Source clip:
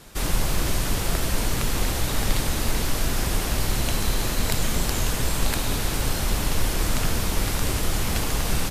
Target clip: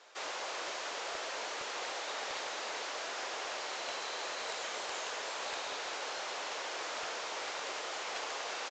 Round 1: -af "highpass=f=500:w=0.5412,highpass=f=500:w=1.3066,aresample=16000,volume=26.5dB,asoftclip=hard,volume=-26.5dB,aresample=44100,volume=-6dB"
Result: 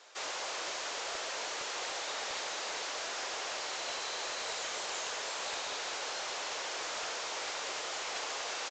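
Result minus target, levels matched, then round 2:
8000 Hz band +3.0 dB
-af "highpass=f=500:w=0.5412,highpass=f=500:w=1.3066,highshelf=f=4.6k:g=-7.5,aresample=16000,volume=26.5dB,asoftclip=hard,volume=-26.5dB,aresample=44100,volume=-6dB"

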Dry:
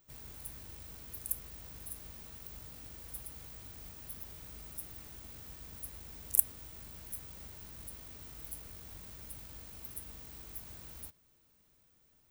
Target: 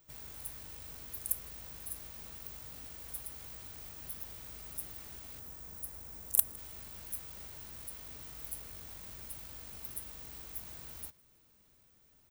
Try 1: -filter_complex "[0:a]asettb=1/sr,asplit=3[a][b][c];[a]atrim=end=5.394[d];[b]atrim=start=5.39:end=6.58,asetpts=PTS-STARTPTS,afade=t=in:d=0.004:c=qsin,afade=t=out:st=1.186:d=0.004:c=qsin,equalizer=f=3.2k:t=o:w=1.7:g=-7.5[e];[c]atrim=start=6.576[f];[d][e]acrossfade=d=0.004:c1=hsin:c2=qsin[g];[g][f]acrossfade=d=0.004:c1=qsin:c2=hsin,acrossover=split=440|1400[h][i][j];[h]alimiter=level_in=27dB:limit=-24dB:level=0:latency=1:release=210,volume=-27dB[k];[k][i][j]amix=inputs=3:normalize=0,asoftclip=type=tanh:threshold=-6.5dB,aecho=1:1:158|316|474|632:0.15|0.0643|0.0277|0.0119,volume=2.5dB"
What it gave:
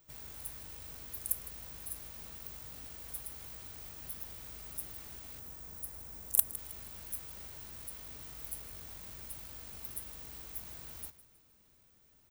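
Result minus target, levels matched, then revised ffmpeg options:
echo-to-direct +10 dB
-filter_complex "[0:a]asettb=1/sr,asplit=3[a][b][c];[a]atrim=end=5.394[d];[b]atrim=start=5.39:end=6.58,asetpts=PTS-STARTPTS,afade=t=in:d=0.004:c=qsin,afade=t=out:st=1.186:d=0.004:c=qsin,equalizer=f=3.2k:t=o:w=1.7:g=-7.5[e];[c]atrim=start=6.576[f];[d][e]acrossfade=d=0.004:c1=hsin:c2=qsin[g];[g][f]acrossfade=d=0.004:c1=qsin:c2=hsin,acrossover=split=440|1400[h][i][j];[h]alimiter=level_in=27dB:limit=-24dB:level=0:latency=1:release=210,volume=-27dB[k];[k][i][j]amix=inputs=3:normalize=0,asoftclip=type=tanh:threshold=-6.5dB,aecho=1:1:158|316:0.0473|0.0203,volume=2.5dB"

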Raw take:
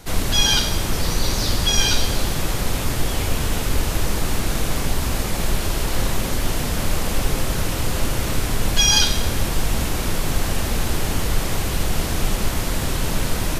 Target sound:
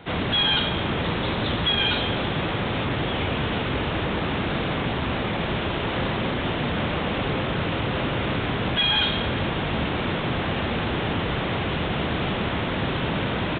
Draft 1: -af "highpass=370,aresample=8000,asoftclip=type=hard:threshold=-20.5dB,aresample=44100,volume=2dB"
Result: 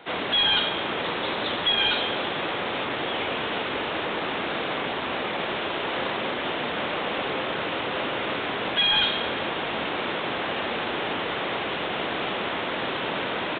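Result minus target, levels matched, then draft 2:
125 Hz band -14.0 dB
-af "highpass=110,aresample=8000,asoftclip=type=hard:threshold=-20.5dB,aresample=44100,volume=2dB"

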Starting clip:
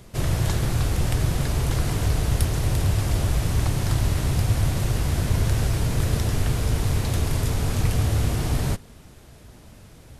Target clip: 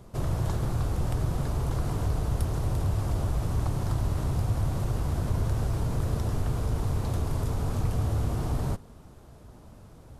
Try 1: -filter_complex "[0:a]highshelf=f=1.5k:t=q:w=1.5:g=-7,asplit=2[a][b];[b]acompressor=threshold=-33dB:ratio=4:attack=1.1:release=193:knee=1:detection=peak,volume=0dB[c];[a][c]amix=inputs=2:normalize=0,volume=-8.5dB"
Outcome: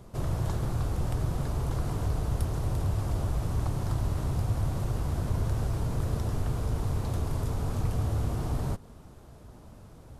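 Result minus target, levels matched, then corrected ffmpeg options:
compressor: peak gain reduction +6.5 dB
-filter_complex "[0:a]highshelf=f=1.5k:t=q:w=1.5:g=-7,asplit=2[a][b];[b]acompressor=threshold=-24.5dB:ratio=4:attack=1.1:release=193:knee=1:detection=peak,volume=0dB[c];[a][c]amix=inputs=2:normalize=0,volume=-8.5dB"

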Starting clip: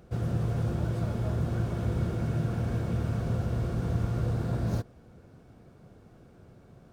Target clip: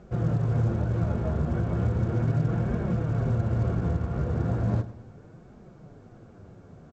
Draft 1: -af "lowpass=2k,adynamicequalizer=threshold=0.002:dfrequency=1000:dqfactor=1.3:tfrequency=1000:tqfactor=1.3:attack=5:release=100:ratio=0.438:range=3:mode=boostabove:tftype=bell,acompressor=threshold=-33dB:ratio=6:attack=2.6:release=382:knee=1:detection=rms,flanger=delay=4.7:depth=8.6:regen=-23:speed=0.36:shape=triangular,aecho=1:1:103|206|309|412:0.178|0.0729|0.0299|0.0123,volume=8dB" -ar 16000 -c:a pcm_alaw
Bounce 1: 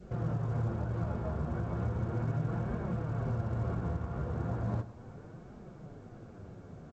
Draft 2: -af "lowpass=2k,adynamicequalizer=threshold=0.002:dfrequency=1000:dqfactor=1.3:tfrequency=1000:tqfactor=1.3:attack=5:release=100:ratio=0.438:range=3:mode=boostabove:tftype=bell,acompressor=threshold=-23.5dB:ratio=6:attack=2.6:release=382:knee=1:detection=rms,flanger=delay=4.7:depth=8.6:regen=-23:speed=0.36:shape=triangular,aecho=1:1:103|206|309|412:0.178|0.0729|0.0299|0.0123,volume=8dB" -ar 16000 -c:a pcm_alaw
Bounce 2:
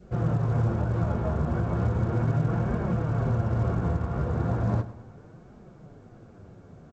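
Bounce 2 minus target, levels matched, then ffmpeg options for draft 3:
1000 Hz band +4.0 dB
-af "lowpass=2k,acompressor=threshold=-23.5dB:ratio=6:attack=2.6:release=382:knee=1:detection=rms,flanger=delay=4.7:depth=8.6:regen=-23:speed=0.36:shape=triangular,aecho=1:1:103|206|309|412:0.178|0.0729|0.0299|0.0123,volume=8dB" -ar 16000 -c:a pcm_alaw

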